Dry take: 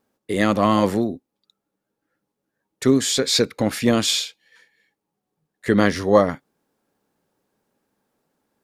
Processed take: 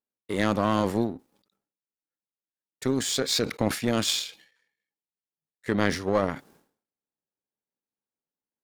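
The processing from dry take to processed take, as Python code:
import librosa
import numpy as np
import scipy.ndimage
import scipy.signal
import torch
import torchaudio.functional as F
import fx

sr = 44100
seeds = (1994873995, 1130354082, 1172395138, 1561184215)

p1 = fx.over_compress(x, sr, threshold_db=-19.0, ratio=-0.5)
p2 = x + (p1 * librosa.db_to_amplitude(-1.0))
p3 = fx.power_curve(p2, sr, exponent=1.4)
p4 = fx.sustainer(p3, sr, db_per_s=120.0)
y = p4 * librosa.db_to_amplitude(-8.0)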